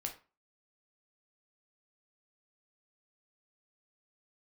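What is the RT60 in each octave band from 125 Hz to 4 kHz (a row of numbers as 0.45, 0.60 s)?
0.35, 0.35, 0.30, 0.35, 0.30, 0.25 s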